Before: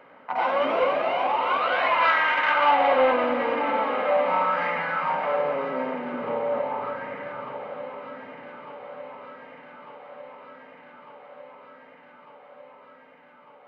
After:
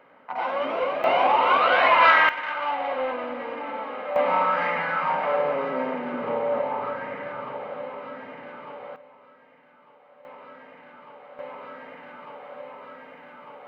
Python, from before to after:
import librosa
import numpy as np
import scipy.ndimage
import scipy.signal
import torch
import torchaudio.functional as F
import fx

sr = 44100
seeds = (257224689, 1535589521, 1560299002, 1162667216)

y = fx.gain(x, sr, db=fx.steps((0.0, -3.5), (1.04, 4.5), (2.29, -8.0), (4.16, 1.0), (8.96, -11.0), (10.25, 0.0), (11.39, 7.5)))